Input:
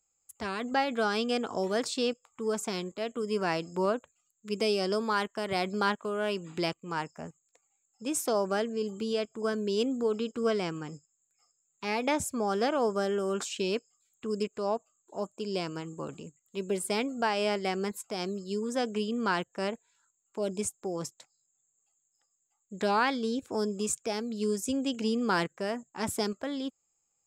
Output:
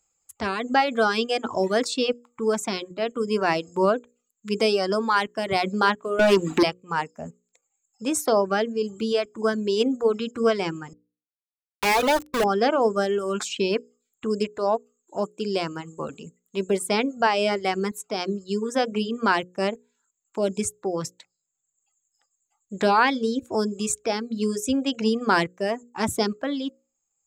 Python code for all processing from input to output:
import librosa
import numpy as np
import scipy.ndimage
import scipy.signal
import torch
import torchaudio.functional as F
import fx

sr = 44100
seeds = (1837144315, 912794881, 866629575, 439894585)

y = fx.chain(x, sr, fx.highpass(hz=190.0, slope=24),
    fx.low_shelf(hz=320.0, db=5.5),
    fx.leveller(passes=3), at=(6.19, 6.63))
y = fx.chain(y, sr, fx.dynamic_eq(hz=1200.0, q=5.2, threshold_db=-52.0, ratio=4.0, max_db=-7),
    fx.bandpass_edges(low_hz=400.0, high_hz=4000.0),
    fx.quant_companded(bits=2), at=(10.93, 12.44))
y = fx.hum_notches(y, sr, base_hz=60, count=9)
y = fx.dereverb_blind(y, sr, rt60_s=1.3)
y = fx.high_shelf(y, sr, hz=6200.0, db=-5.5)
y = F.gain(torch.from_numpy(y), 8.5).numpy()